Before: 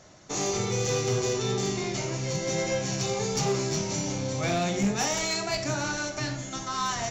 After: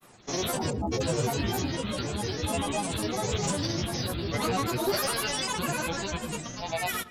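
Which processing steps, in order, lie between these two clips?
spectral delete 0.63–0.96, 750–8200 Hz; grains 0.1 s, pitch spread up and down by 12 st; darkening echo 0.113 s, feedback 28%, low-pass 2400 Hz, level -15 dB

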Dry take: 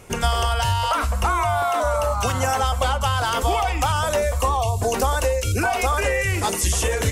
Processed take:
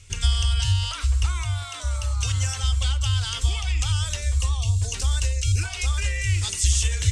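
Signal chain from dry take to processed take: EQ curve 100 Hz 0 dB, 210 Hz -23 dB, 300 Hz -21 dB, 730 Hz -27 dB, 3400 Hz -1 dB, 8400 Hz -2 dB, 14000 Hz -29 dB; gain +2.5 dB

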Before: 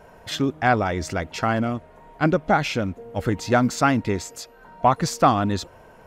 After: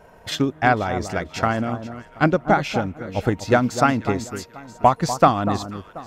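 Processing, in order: echo with dull and thin repeats by turns 0.243 s, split 1300 Hz, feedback 52%, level -8.5 dB; transient shaper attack +5 dB, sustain -2 dB; gain -1 dB

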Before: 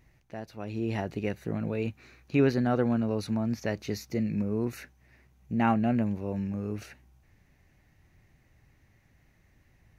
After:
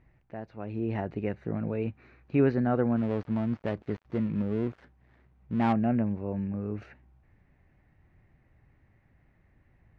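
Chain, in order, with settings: 2.96–5.73 switching dead time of 0.21 ms; LPF 1900 Hz 12 dB/oct

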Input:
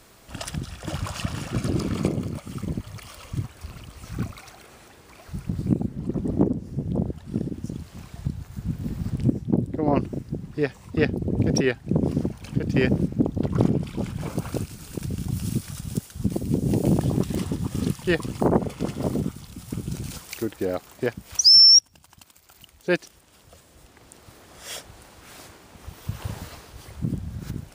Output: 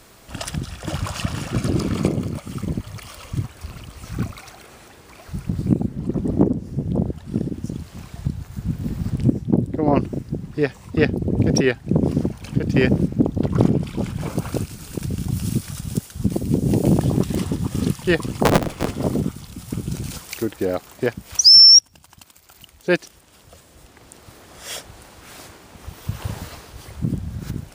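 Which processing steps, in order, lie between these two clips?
18.44–18.91 cycle switcher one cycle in 3, inverted; gain +4 dB

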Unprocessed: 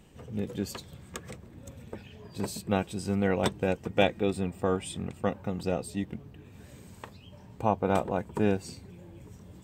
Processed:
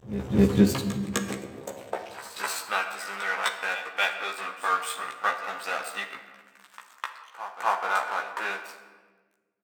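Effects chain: in parallel at +2.5 dB: limiter -19 dBFS, peak gain reduction 10 dB; on the sum: vocal rider within 4 dB 0.5 s; crossover distortion -33 dBFS; high-pass sweep 68 Hz -> 1300 Hz, 0.36–2.37; pre-echo 0.255 s -12.5 dB; vibrato 6.7 Hz 16 cents; doubler 15 ms -2.5 dB; on a send at -6.5 dB: reverb RT60 1.4 s, pre-delay 14 ms

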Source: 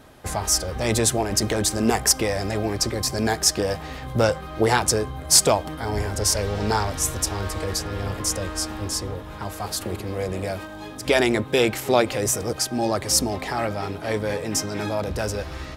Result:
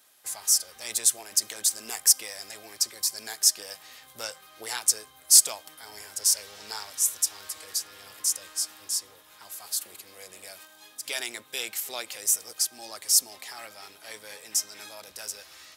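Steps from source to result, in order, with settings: differentiator

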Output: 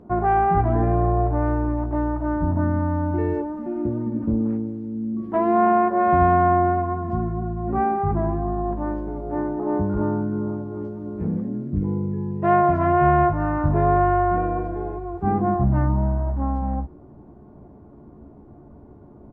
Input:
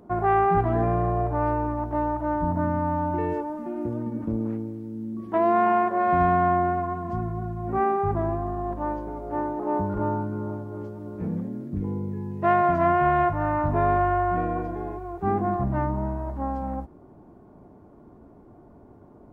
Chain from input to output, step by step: LPF 2500 Hz 6 dB/oct; low shelf 270 Hz +7 dB; doubler 14 ms -7.5 dB

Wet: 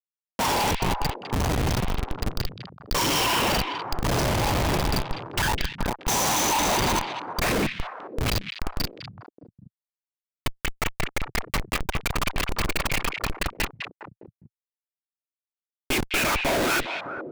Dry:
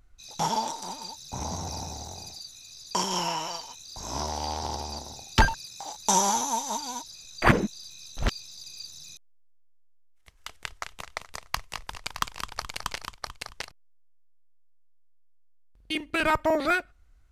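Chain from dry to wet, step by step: whisperiser; dynamic EQ 2400 Hz, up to +7 dB, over -48 dBFS, Q 2.5; spectral noise reduction 6 dB; Schmitt trigger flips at -35.5 dBFS; on a send: delay with a stepping band-pass 0.204 s, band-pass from 2700 Hz, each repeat -1.4 oct, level -3 dB; on the sum: gain +8.5 dB

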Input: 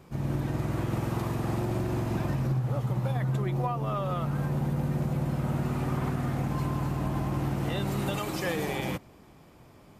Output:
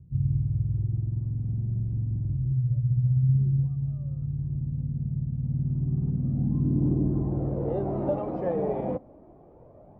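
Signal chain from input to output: low-pass sweep 110 Hz -> 620 Hz, 5.36–7.89; phaser 0.29 Hz, delay 4.9 ms, feedback 37%

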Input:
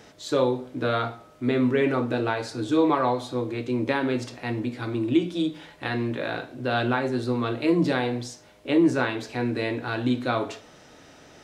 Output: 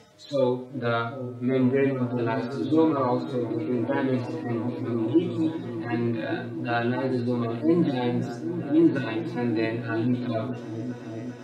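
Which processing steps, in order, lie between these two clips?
median-filter separation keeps harmonic; repeats that get brighter 0.388 s, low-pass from 200 Hz, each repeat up 1 oct, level -6 dB

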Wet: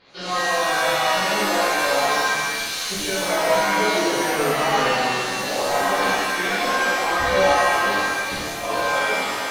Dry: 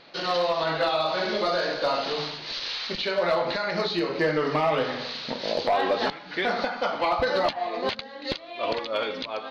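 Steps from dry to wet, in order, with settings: chorus voices 6, 0.47 Hz, delay 15 ms, depth 1.1 ms; shimmer reverb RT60 1.5 s, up +7 st, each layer -2 dB, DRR -7.5 dB; gain -3 dB

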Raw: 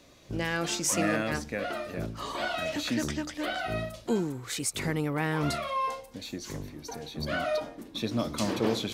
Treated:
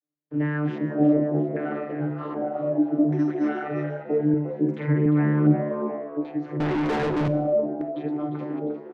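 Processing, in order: ending faded out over 1.06 s; gate -46 dBFS, range -45 dB; bell 280 Hz +9 dB 0.99 oct; in parallel at +0.5 dB: limiter -29 dBFS, peak gain reduction 17 dB; on the sum: vocoder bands 32, saw 149 Hz; 2.93–3.49 sample-rate reducer 5700 Hz, jitter 0%; LFO low-pass square 0.64 Hz 610–1800 Hz; 4.29–5.06 doubler 49 ms -2.5 dB; frequency-shifting echo 0.352 s, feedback 41%, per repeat +70 Hz, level -11 dB; 6.6–7.28 overdrive pedal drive 34 dB, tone 3600 Hz, clips at -17.5 dBFS; Schroeder reverb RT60 0.96 s, combs from 30 ms, DRR 15 dB

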